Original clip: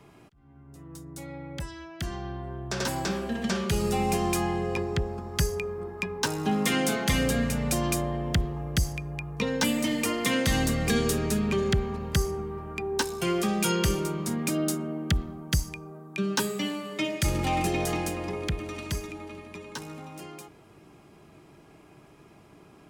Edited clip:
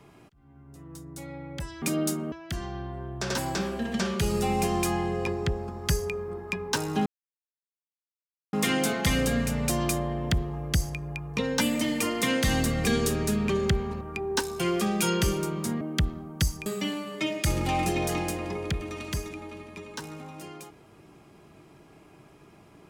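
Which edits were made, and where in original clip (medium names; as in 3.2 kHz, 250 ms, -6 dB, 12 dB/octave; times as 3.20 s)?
6.56 s: insert silence 1.47 s
12.04–12.63 s: delete
14.43–14.93 s: move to 1.82 s
15.78–16.44 s: delete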